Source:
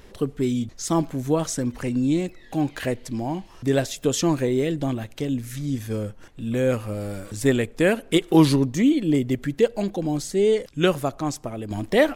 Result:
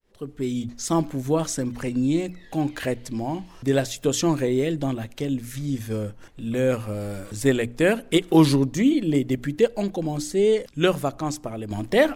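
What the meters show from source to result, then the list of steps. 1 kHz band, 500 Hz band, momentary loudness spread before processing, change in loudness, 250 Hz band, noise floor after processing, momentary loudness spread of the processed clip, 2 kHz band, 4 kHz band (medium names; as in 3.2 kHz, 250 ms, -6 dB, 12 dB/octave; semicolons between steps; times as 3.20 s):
0.0 dB, 0.0 dB, 10 LU, -0.5 dB, -0.5 dB, -48 dBFS, 10 LU, 0.0 dB, 0.0 dB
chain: fade-in on the opening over 0.64 s; hum notches 60/120/180/240/300 Hz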